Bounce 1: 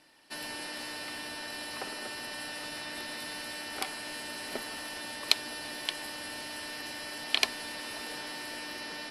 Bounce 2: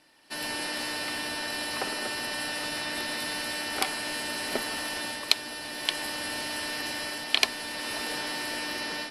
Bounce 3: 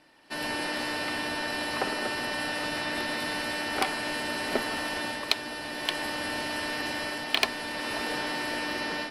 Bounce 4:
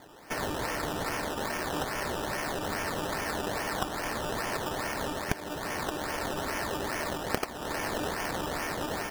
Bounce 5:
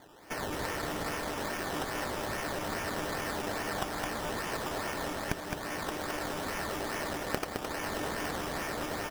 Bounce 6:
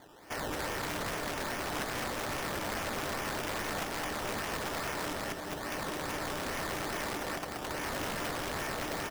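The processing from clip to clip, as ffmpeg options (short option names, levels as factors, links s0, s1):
-af "dynaudnorm=f=220:g=3:m=2.24"
-filter_complex "[0:a]highshelf=f=3700:g=-10.5,asplit=2[s0][s1];[s1]aeval=exprs='0.0891*(abs(mod(val(0)/0.0891+3,4)-2)-1)':c=same,volume=0.335[s2];[s0][s2]amix=inputs=2:normalize=0,volume=1.19"
-filter_complex "[0:a]highpass=290,acrossover=split=830|2800[s0][s1][s2];[s0]acompressor=threshold=0.00355:ratio=4[s3];[s1]acompressor=threshold=0.00355:ratio=4[s4];[s2]acompressor=threshold=0.00794:ratio=4[s5];[s3][s4][s5]amix=inputs=3:normalize=0,acrusher=samples=16:mix=1:aa=0.000001:lfo=1:lforange=9.6:lforate=2.4,volume=2.66"
-af "aecho=1:1:214:0.596,volume=0.668"
-af "aeval=exprs='(mod(26.6*val(0)+1,2)-1)/26.6':c=same"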